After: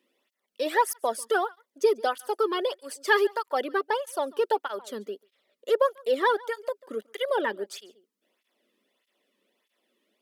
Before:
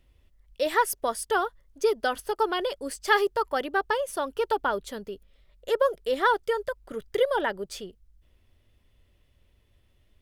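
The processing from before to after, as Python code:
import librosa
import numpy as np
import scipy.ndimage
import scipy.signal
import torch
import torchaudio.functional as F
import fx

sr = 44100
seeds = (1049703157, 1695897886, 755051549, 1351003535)

y = scipy.signal.sosfilt(scipy.signal.ellip(4, 1.0, 40, 210.0, 'highpass', fs=sr, output='sos'), x)
y = y + 10.0 ** (-23.0 / 20.0) * np.pad(y, (int(142 * sr / 1000.0), 0))[:len(y)]
y = fx.flanger_cancel(y, sr, hz=1.6, depth_ms=1.5)
y = y * librosa.db_to_amplitude(2.5)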